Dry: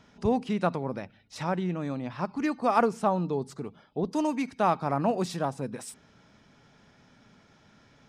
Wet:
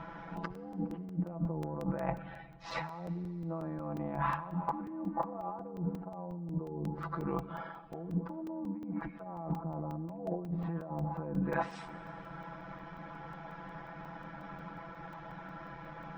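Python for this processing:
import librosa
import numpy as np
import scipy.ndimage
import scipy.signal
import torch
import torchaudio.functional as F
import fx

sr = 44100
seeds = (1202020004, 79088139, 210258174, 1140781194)

y = fx.rattle_buzz(x, sr, strikes_db=-26.0, level_db=-17.0)
y = fx.env_lowpass_down(y, sr, base_hz=390.0, full_db=-24.5)
y = scipy.signal.sosfilt(scipy.signal.butter(2, 1200.0, 'lowpass', fs=sr, output='sos'), y)
y = fx.low_shelf_res(y, sr, hz=580.0, db=-7.0, q=1.5)
y = fx.notch(y, sr, hz=700.0, q=12.0)
y = fx.over_compress(y, sr, threshold_db=-48.0, ratio=-1.0)
y = fx.rev_schroeder(y, sr, rt60_s=1.1, comb_ms=29, drr_db=17.0)
y = fx.stretch_grains(y, sr, factor=2.0, grain_ms=24.0)
y = fx.buffer_crackle(y, sr, first_s=0.37, period_s=0.18, block=128, kind='zero')
y = y * 10.0 ** (11.0 / 20.0)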